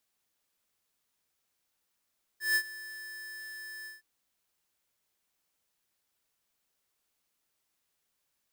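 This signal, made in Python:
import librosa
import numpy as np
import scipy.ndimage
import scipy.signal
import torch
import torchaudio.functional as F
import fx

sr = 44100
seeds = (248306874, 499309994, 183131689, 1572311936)

y = fx.adsr_tone(sr, wave='square', hz=1750.0, attack_ms=155.0, decay_ms=69.0, sustain_db=-18.5, held_s=1.46, release_ms=157.0, level_db=-25.0)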